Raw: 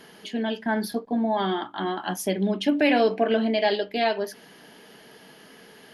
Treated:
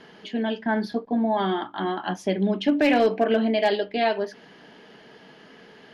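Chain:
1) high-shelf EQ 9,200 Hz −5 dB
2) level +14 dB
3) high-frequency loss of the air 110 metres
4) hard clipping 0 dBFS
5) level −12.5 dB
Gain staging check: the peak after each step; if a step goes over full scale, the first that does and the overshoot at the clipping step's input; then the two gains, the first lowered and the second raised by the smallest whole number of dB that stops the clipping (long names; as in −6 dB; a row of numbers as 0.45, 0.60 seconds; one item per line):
−9.5, +4.5, +4.0, 0.0, −12.5 dBFS
step 2, 4.0 dB
step 2 +10 dB, step 5 −8.5 dB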